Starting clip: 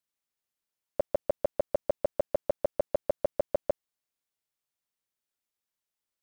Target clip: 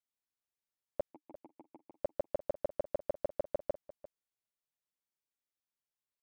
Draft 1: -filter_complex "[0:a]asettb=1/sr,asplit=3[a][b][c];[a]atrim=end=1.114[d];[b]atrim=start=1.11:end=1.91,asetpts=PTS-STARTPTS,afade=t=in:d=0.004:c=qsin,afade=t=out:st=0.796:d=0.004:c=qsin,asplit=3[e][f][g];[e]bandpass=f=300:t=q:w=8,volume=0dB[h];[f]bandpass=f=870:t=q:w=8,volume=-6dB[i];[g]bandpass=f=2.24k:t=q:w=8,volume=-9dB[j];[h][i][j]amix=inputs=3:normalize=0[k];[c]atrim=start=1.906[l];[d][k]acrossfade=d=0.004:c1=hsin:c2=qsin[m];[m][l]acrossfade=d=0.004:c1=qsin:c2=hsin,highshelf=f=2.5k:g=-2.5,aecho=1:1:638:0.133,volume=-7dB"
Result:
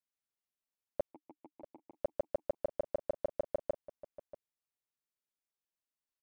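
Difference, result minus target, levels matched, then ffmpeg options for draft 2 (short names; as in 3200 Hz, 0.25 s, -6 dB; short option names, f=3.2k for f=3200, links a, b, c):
echo 0.291 s late
-filter_complex "[0:a]asettb=1/sr,asplit=3[a][b][c];[a]atrim=end=1.114[d];[b]atrim=start=1.11:end=1.91,asetpts=PTS-STARTPTS,afade=t=in:d=0.004:c=qsin,afade=t=out:st=0.796:d=0.004:c=qsin,asplit=3[e][f][g];[e]bandpass=f=300:t=q:w=8,volume=0dB[h];[f]bandpass=f=870:t=q:w=8,volume=-6dB[i];[g]bandpass=f=2.24k:t=q:w=8,volume=-9dB[j];[h][i][j]amix=inputs=3:normalize=0[k];[c]atrim=start=1.906[l];[d][k]acrossfade=d=0.004:c1=hsin:c2=qsin[m];[m][l]acrossfade=d=0.004:c1=qsin:c2=hsin,highshelf=f=2.5k:g=-2.5,aecho=1:1:347:0.133,volume=-7dB"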